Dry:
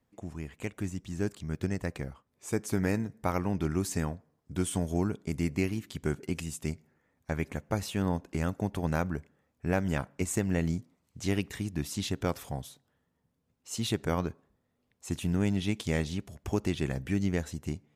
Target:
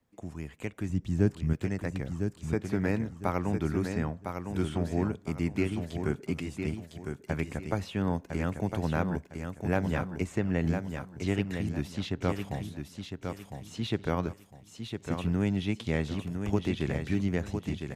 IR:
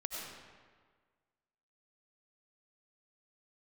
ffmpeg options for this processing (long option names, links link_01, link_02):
-filter_complex "[0:a]asettb=1/sr,asplit=3[link_01][link_02][link_03];[link_01]atrim=end=0.894[link_04];[link_02]atrim=start=0.89:end=1.53,asetpts=PTS-STARTPTS,afade=type=in:duration=0.004:curve=qsin,afade=type=out:start_time=0.636:duration=0.004:curve=qsin,lowshelf=frequency=330:gain=10[link_05];[link_03]atrim=start=1.526[link_06];[link_04][link_05]acrossfade=duration=0.004:curve1=hsin:curve2=qsin[link_07];[link_07][link_06]acrossfade=duration=0.004:curve1=qsin:curve2=hsin,aecho=1:1:1006|2012|3018|4024:0.473|0.142|0.0426|0.0128,acrossover=split=160|1700|4100[link_08][link_09][link_10][link_11];[link_11]acompressor=threshold=-57dB:ratio=6[link_12];[link_08][link_09][link_10][link_12]amix=inputs=4:normalize=0"